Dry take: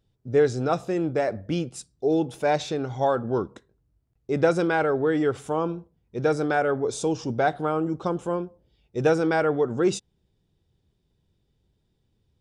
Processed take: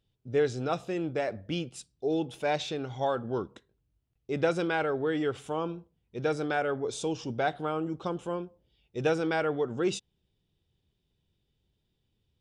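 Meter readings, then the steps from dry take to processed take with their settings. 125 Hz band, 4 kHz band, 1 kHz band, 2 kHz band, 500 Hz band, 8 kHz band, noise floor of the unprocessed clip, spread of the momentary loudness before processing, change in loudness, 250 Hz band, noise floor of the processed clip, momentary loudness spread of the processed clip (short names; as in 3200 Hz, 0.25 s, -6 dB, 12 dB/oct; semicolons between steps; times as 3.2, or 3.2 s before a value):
-6.5 dB, -0.5 dB, -6.0 dB, -4.5 dB, -6.5 dB, -5.5 dB, -72 dBFS, 8 LU, -6.0 dB, -6.5 dB, -78 dBFS, 8 LU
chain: bell 3000 Hz +8.5 dB 0.92 oct; gain -6.5 dB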